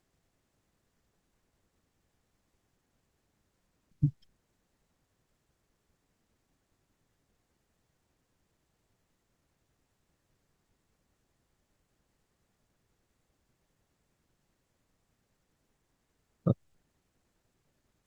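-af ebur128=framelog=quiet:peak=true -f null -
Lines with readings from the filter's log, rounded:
Integrated loudness:
  I:         -33.6 LUFS
  Threshold: -44.1 LUFS
Loudness range:
  LRA:         0.6 LU
  Threshold: -62.0 LUFS
  LRA low:   -42.2 LUFS
  LRA high:  -41.6 LUFS
True peak:
  Peak:      -12.0 dBFS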